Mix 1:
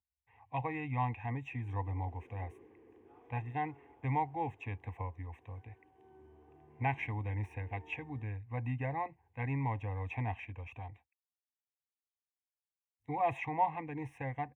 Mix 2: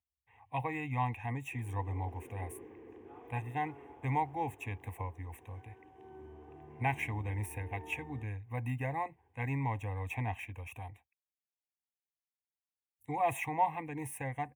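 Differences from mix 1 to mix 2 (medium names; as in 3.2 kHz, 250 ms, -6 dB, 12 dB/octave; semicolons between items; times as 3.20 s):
speech: remove distance through air 200 m; background +8.0 dB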